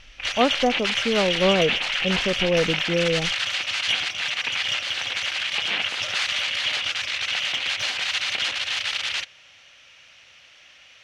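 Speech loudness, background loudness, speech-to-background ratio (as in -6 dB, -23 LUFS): -24.5 LUFS, -23.5 LUFS, -1.0 dB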